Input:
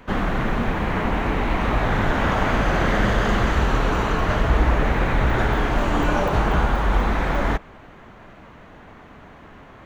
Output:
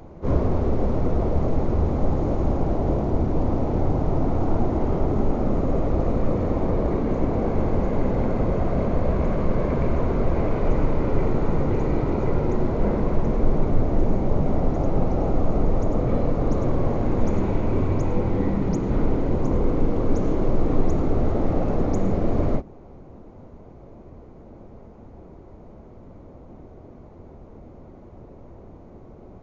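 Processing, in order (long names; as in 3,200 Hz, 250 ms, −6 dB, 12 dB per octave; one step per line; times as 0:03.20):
change of speed 0.335×
speech leveller 0.5 s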